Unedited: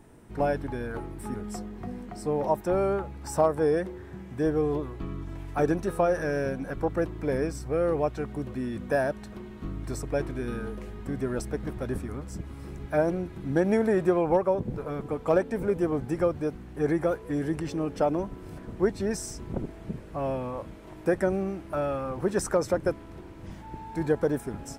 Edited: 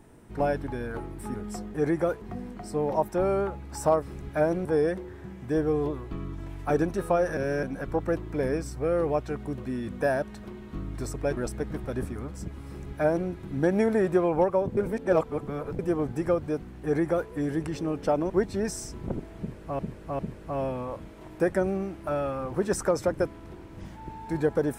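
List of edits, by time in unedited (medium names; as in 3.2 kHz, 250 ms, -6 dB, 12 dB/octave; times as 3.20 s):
6.26–6.52 s: reverse
10.26–11.30 s: delete
12.59–13.22 s: copy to 3.54 s
14.70–15.72 s: reverse
16.76–17.24 s: copy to 1.74 s
18.23–18.76 s: delete
19.85–20.25 s: loop, 3 plays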